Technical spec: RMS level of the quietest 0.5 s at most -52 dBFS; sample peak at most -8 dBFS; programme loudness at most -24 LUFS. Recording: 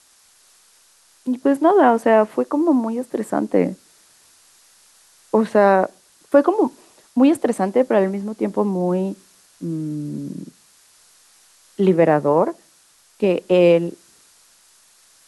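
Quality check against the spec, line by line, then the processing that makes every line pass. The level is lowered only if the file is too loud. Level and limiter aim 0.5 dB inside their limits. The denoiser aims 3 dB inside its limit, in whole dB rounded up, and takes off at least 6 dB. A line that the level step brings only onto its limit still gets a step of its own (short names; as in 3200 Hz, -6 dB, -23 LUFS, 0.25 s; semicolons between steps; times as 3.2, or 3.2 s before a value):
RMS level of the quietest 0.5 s -55 dBFS: OK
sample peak -3.5 dBFS: fail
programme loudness -19.0 LUFS: fail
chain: gain -5.5 dB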